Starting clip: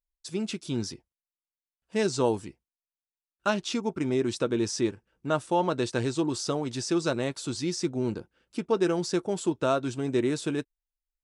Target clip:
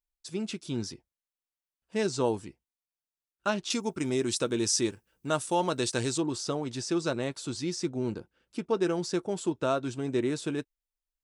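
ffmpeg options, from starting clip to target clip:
-filter_complex "[0:a]asettb=1/sr,asplit=3[s0][s1][s2];[s0]atrim=end=3.704[s3];[s1]atrim=start=3.7:end=6.18,asetpts=PTS-STARTPTS,afade=t=in:d=0.004:c=qsin,afade=t=out:st=2.476:d=0.004:c=qsin,aemphasis=mode=production:type=75kf[s4];[s2]atrim=start=6.176[s5];[s3][s4]acrossfade=d=0.004:c1=hsin:c2=qsin[s6];[s6][s5]acrossfade=d=0.004:c1=qsin:c2=hsin,volume=0.75"

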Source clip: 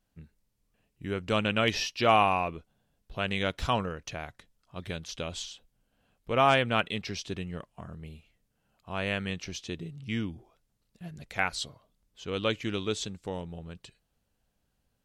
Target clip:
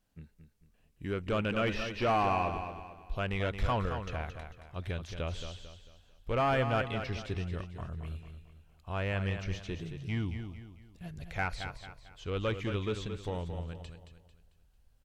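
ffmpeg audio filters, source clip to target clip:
-filter_complex "[0:a]asubboost=boost=5.5:cutoff=78,asoftclip=type=tanh:threshold=0.0708,acrossover=split=2700[s0][s1];[s1]acompressor=threshold=0.00251:ratio=4:attack=1:release=60[s2];[s0][s2]amix=inputs=2:normalize=0,asplit=2[s3][s4];[s4]aecho=0:1:223|446|669|892:0.376|0.143|0.0543|0.0206[s5];[s3][s5]amix=inputs=2:normalize=0"

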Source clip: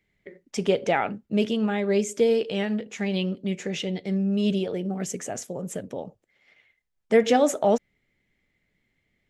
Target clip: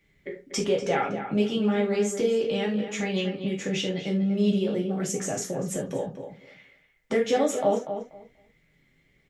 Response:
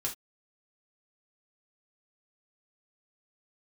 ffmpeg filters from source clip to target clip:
-filter_complex "[0:a]acompressor=threshold=0.0141:ratio=2,asplit=2[s0][s1];[s1]adelay=242,lowpass=f=2600:p=1,volume=0.376,asplit=2[s2][s3];[s3]adelay=242,lowpass=f=2600:p=1,volume=0.18,asplit=2[s4][s5];[s5]adelay=242,lowpass=f=2600:p=1,volume=0.18[s6];[s0][s2][s4][s6]amix=inputs=4:normalize=0[s7];[1:a]atrim=start_sample=2205[s8];[s7][s8]afir=irnorm=-1:irlink=0,volume=1.78"

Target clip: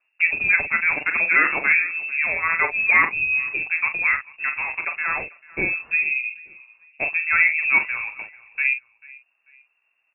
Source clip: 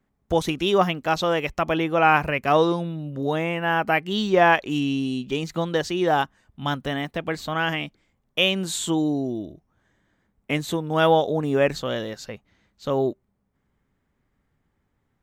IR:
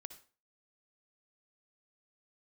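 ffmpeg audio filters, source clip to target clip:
-filter_complex "[0:a]aeval=exprs='0.355*(abs(mod(val(0)/0.355+3,4)-2)-1)':c=same,lowpass=f=2400:t=q:w=0.5098,lowpass=f=2400:t=q:w=0.6013,lowpass=f=2400:t=q:w=0.9,lowpass=f=2400:t=q:w=2.563,afreqshift=-2800,asplit=2[s0][s1];[s1]aecho=0:1:17|66:0.447|0.422[s2];[s0][s2]amix=inputs=2:normalize=0,atempo=1.5,asplit=2[s3][s4];[s4]aecho=0:1:441|882:0.075|0.0247[s5];[s3][s5]amix=inputs=2:normalize=0"

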